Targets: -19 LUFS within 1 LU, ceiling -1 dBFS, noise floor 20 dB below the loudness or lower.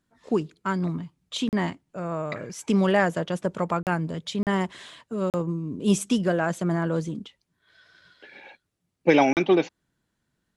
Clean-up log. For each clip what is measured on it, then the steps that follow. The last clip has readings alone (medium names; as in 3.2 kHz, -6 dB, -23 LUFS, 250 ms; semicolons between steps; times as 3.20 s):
dropouts 5; longest dropout 38 ms; loudness -26.0 LUFS; peak level -6.5 dBFS; loudness target -19.0 LUFS
-> interpolate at 1.49/3.83/4.43/5.30/9.33 s, 38 ms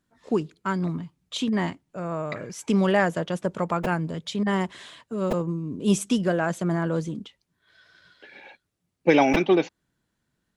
dropouts 0; loudness -25.5 LUFS; peak level -6.5 dBFS; loudness target -19.0 LUFS
-> trim +6.5 dB; peak limiter -1 dBFS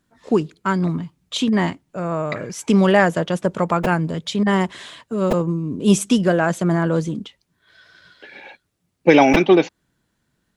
loudness -19.0 LUFS; peak level -1.0 dBFS; noise floor -72 dBFS